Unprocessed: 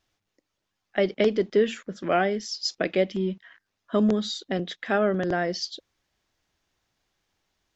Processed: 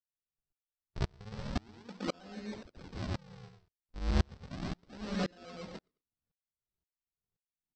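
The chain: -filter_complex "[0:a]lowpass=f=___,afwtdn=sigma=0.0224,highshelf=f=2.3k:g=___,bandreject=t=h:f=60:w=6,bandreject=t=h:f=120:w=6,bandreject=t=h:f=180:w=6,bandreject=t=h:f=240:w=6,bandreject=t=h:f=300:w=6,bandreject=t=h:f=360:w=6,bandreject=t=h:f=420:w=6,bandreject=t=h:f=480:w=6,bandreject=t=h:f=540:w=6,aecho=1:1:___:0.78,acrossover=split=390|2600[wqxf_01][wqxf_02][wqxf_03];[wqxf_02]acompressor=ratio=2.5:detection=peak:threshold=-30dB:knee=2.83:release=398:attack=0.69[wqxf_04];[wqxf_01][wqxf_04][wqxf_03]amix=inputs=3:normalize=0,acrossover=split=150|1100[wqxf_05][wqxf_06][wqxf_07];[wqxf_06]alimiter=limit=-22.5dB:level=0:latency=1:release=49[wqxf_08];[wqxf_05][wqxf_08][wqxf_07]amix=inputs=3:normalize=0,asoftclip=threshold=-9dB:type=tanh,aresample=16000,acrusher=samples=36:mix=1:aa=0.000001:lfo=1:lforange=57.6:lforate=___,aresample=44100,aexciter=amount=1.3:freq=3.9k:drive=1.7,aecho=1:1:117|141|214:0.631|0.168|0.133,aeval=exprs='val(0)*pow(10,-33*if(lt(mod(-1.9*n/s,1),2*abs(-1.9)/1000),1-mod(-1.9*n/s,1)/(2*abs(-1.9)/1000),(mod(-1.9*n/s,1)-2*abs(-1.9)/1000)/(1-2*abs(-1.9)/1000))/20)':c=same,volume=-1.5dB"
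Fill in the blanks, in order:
5.5k, 9, 4, 0.33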